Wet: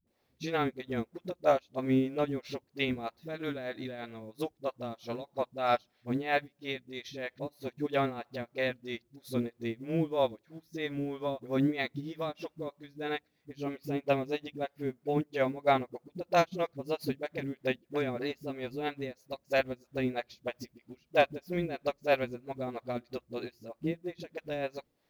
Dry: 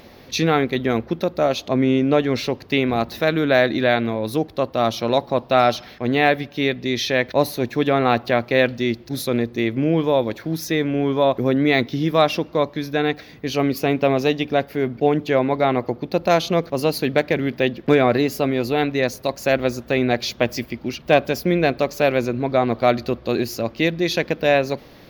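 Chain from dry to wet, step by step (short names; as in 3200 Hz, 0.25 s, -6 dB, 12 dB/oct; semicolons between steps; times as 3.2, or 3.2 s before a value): 23.61–24.13 LPF 1200 Hz 6 dB/oct; limiter -9 dBFS, peak gain reduction 5 dB; harmonic tremolo 3.1 Hz, depth 70%, crossover 400 Hz; requantised 10-bit, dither triangular; dispersion highs, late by 72 ms, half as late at 310 Hz; upward expander 2.5:1, over -34 dBFS; gain -2 dB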